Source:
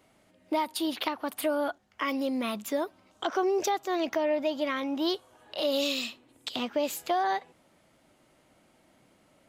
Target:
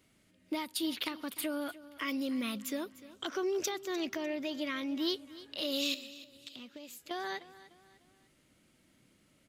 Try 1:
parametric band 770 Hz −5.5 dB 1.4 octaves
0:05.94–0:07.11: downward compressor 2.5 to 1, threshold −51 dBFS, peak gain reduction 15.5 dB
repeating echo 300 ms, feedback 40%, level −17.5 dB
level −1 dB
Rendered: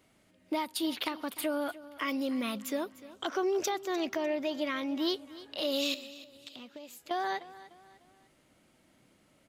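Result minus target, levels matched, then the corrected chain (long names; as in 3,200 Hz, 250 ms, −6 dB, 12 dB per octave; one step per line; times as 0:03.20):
1,000 Hz band +4.5 dB
parametric band 770 Hz −14 dB 1.4 octaves
0:05.94–0:07.11: downward compressor 2.5 to 1, threshold −51 dBFS, peak gain reduction 13.5 dB
repeating echo 300 ms, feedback 40%, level −17.5 dB
level −1 dB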